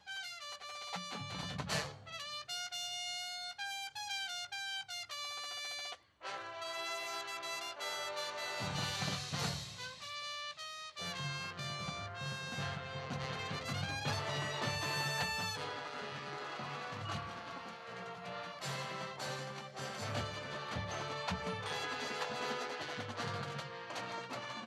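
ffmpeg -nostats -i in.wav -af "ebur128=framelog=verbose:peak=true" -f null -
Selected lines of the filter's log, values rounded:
Integrated loudness:
  I:         -40.3 LUFS
  Threshold: -50.3 LUFS
Loudness range:
  LRA:         4.7 LU
  Threshold: -60.1 LUFS
  LRA low:   -42.5 LUFS
  LRA high:  -37.8 LUFS
True peak:
  Peak:      -22.8 dBFS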